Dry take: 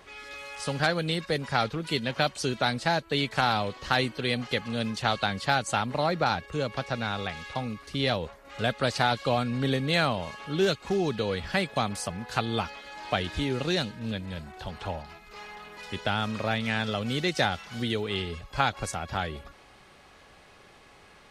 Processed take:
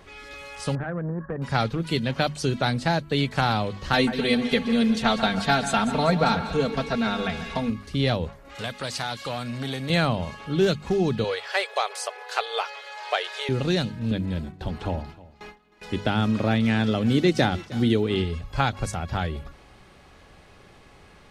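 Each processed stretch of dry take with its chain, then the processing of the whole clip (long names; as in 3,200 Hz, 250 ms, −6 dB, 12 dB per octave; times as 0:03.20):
0:00.75–0:01.42: downward compressor 3 to 1, threshold −28 dBFS + linear-phase brick-wall low-pass 1,900 Hz + saturating transformer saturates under 520 Hz
0:03.93–0:07.70: comb filter 4.4 ms, depth 96% + echo with a time of its own for lows and highs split 2,100 Hz, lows 141 ms, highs 196 ms, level −11 dB
0:08.55–0:09.90: spectral tilt +2.5 dB per octave + downward compressor 2 to 1, threshold −29 dBFS + saturating transformer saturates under 1,500 Hz
0:11.24–0:13.49: mid-hump overdrive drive 8 dB, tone 7,400 Hz, clips at −10 dBFS + linear-phase brick-wall high-pass 380 Hz
0:14.11–0:18.24: noise gate with hold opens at −33 dBFS, closes at −36 dBFS + parametric band 300 Hz +7.5 dB 1 octave + single-tap delay 311 ms −20 dB
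whole clip: low-shelf EQ 290 Hz +10 dB; mains-hum notches 50/100/150/200/250 Hz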